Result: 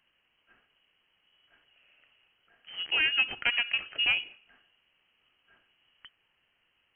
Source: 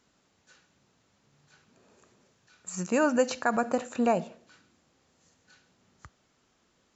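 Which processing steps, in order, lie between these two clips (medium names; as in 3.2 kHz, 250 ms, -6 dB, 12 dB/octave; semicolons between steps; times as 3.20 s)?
tracing distortion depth 0.19 ms; frequency inversion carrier 3.1 kHz; trim -2.5 dB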